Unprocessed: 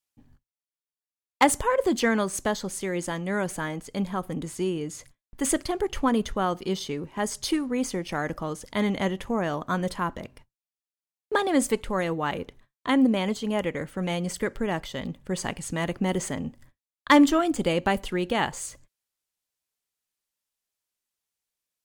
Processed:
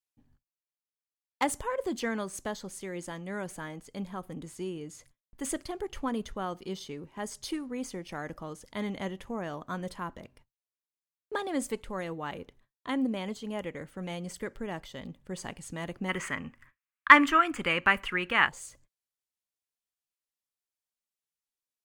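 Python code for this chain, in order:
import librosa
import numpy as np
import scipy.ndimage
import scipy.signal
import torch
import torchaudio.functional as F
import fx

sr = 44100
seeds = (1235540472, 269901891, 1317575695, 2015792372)

y = fx.band_shelf(x, sr, hz=1700.0, db=16.0, octaves=1.7, at=(16.08, 18.47), fade=0.02)
y = F.gain(torch.from_numpy(y), -9.0).numpy()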